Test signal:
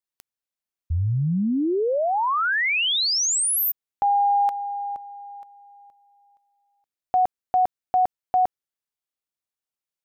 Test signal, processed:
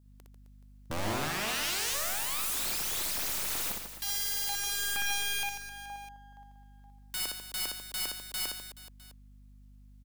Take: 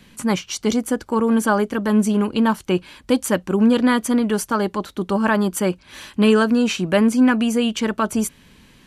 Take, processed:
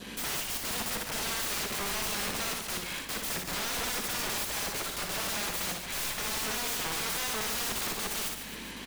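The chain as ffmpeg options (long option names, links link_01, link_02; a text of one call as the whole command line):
ffmpeg -i in.wav -filter_complex "[0:a]aeval=exprs='if(lt(val(0),0),0.447*val(0),val(0))':channel_layout=same,highpass=240,adynamicequalizer=threshold=0.00562:dfrequency=2100:dqfactor=3.7:tfrequency=2100:tqfactor=3.7:attack=5:release=100:ratio=0.375:range=1.5:mode=boostabove:tftype=bell,asplit=2[link_01][link_02];[link_02]acompressor=threshold=-34dB:ratio=8:attack=0.3:release=393:knee=6:detection=peak,volume=0.5dB[link_03];[link_01][link_03]amix=inputs=2:normalize=0,alimiter=limit=-18dB:level=0:latency=1:release=257,aeval=exprs='(mod(53.1*val(0)+1,2)-1)/53.1':channel_layout=same,aeval=exprs='val(0)+0.000708*(sin(2*PI*50*n/s)+sin(2*PI*2*50*n/s)/2+sin(2*PI*3*50*n/s)/3+sin(2*PI*4*50*n/s)/4+sin(2*PI*5*50*n/s)/5)':channel_layout=same,asplit=2[link_04][link_05];[link_05]aecho=0:1:60|144|261.6|426.2|656.7:0.631|0.398|0.251|0.158|0.1[link_06];[link_04][link_06]amix=inputs=2:normalize=0,volume=4.5dB" out.wav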